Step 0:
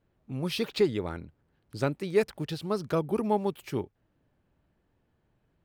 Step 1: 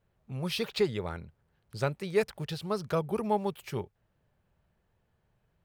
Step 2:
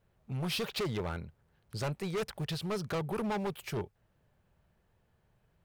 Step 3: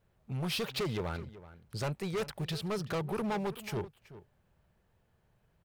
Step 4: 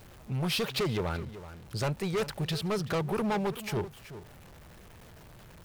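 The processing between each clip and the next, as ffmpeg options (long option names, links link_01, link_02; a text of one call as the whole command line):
ffmpeg -i in.wav -af "equalizer=frequency=290:width_type=o:width=0.48:gain=-13" out.wav
ffmpeg -i in.wav -af "asoftclip=type=hard:threshold=-32.5dB,volume=2dB" out.wav
ffmpeg -i in.wav -filter_complex "[0:a]asplit=2[link_01][link_02];[link_02]adelay=379,volume=-16dB,highshelf=frequency=4000:gain=-8.53[link_03];[link_01][link_03]amix=inputs=2:normalize=0" out.wav
ffmpeg -i in.wav -af "aeval=exprs='val(0)+0.5*0.00316*sgn(val(0))':channel_layout=same,volume=3.5dB" out.wav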